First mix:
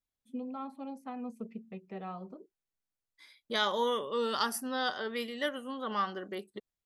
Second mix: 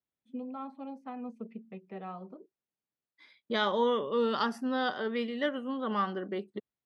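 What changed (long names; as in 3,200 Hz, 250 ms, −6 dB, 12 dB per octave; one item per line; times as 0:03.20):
second voice: add low-shelf EQ 350 Hz +10 dB
master: add band-pass filter 140–3,600 Hz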